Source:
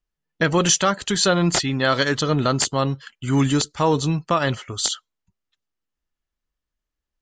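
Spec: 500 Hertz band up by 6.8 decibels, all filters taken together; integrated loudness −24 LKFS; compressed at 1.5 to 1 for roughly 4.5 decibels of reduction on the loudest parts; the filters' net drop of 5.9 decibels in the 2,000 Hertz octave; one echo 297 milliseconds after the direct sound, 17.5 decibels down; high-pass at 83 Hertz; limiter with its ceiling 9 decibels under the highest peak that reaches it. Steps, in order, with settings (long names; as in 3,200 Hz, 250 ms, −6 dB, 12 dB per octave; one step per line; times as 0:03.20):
high-pass filter 83 Hz
parametric band 500 Hz +8.5 dB
parametric band 2,000 Hz −9 dB
downward compressor 1.5 to 1, threshold −22 dBFS
brickwall limiter −15 dBFS
single-tap delay 297 ms −17.5 dB
level +1.5 dB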